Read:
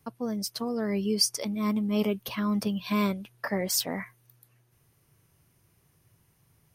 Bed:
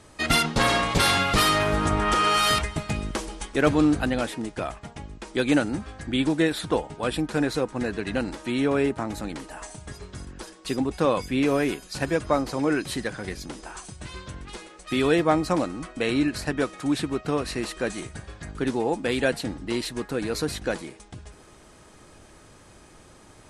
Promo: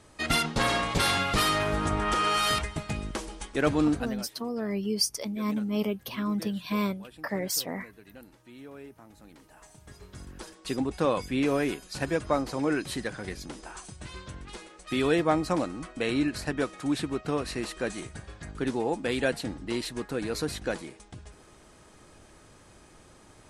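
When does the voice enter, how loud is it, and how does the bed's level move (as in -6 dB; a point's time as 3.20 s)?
3.80 s, -2.0 dB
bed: 3.94 s -4.5 dB
4.36 s -22.5 dB
9.08 s -22.5 dB
10.35 s -3.5 dB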